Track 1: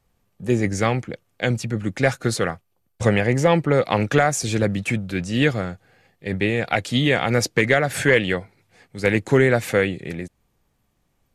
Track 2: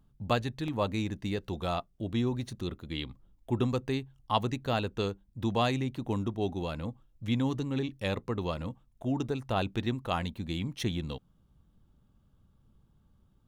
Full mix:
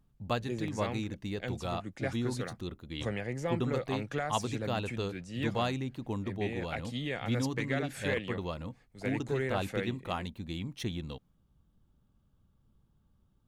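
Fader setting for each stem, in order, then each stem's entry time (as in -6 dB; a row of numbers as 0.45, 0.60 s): -17.0, -4.0 dB; 0.00, 0.00 s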